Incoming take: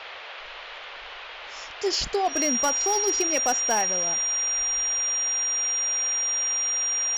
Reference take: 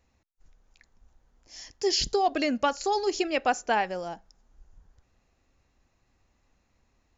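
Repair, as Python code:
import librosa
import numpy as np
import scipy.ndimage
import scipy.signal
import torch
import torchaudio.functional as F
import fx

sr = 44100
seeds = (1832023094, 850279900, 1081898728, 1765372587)

y = fx.fix_declip(x, sr, threshold_db=-16.5)
y = fx.notch(y, sr, hz=5700.0, q=30.0)
y = fx.noise_reduce(y, sr, print_start_s=0.89, print_end_s=1.39, reduce_db=30.0)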